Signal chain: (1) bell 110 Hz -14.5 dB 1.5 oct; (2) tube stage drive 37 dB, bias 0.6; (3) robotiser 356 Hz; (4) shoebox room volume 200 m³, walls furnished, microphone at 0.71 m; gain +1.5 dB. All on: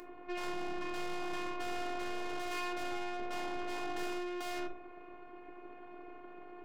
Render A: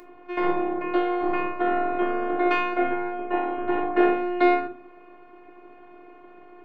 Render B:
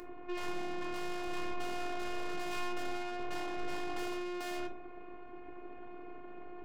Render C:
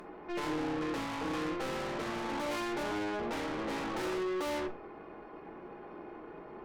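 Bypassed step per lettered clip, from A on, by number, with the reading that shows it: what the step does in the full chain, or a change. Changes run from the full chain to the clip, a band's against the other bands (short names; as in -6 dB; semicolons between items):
2, crest factor change +3.0 dB; 1, 125 Hz band +3.0 dB; 3, 125 Hz band +9.0 dB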